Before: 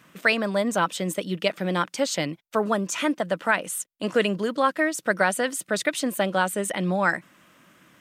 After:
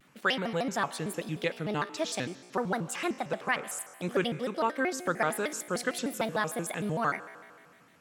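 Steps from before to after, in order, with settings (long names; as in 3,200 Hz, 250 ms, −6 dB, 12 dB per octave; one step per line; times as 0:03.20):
tuned comb filter 52 Hz, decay 1.9 s, harmonics all, mix 60%
pitch modulation by a square or saw wave square 6.6 Hz, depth 250 cents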